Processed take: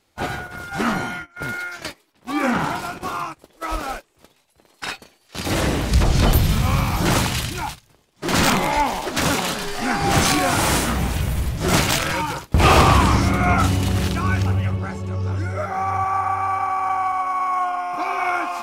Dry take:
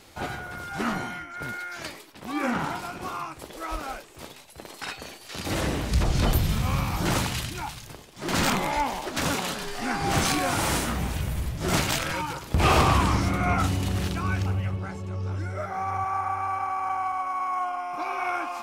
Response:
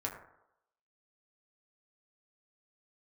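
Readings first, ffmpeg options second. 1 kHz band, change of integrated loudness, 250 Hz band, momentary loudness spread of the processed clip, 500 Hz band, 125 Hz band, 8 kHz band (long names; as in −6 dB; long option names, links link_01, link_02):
+6.5 dB, +6.5 dB, +6.5 dB, 13 LU, +6.5 dB, +6.5 dB, +6.5 dB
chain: -af "agate=range=-20dB:threshold=-36dB:ratio=16:detection=peak,volume=6.5dB"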